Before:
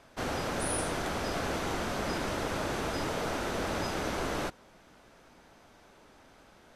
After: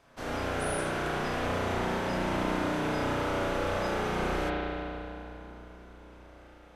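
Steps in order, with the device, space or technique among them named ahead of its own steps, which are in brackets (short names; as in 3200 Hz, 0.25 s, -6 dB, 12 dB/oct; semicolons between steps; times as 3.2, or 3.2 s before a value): dub delay into a spring reverb (darkening echo 0.313 s, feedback 69%, low-pass 1600 Hz, level -11.5 dB; spring tank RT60 2.6 s, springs 33 ms, chirp 75 ms, DRR -7 dB); gain -5.5 dB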